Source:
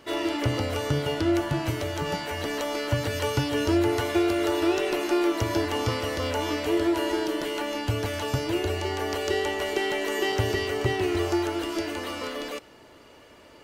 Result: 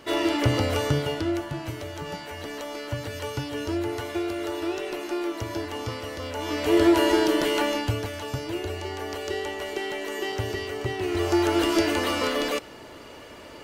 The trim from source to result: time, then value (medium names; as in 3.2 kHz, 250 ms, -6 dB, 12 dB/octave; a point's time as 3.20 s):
0.81 s +3.5 dB
1.47 s -5.5 dB
6.32 s -5.5 dB
6.81 s +6 dB
7.65 s +6 dB
8.12 s -4 dB
10.95 s -4 dB
11.60 s +7.5 dB